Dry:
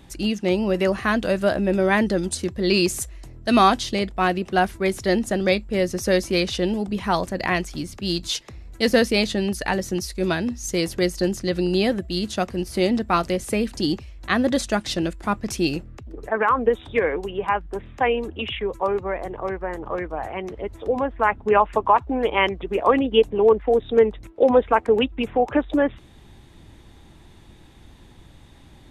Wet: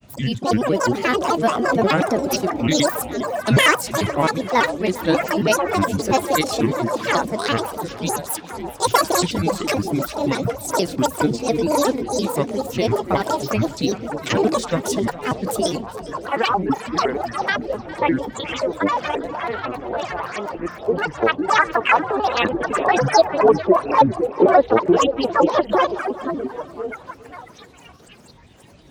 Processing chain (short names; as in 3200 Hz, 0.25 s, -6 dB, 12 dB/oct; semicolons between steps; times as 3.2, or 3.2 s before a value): trilling pitch shifter +8 st, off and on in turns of 87 ms; HPF 100 Hz 12 dB/oct; bell 2100 Hz -5 dB 0.7 oct; delay with a stepping band-pass 0.513 s, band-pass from 410 Hz, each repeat 0.7 oct, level -5.5 dB; grains, spray 13 ms, pitch spread up and down by 12 st; warbling echo 0.405 s, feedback 39%, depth 51 cents, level -18 dB; gain +3.5 dB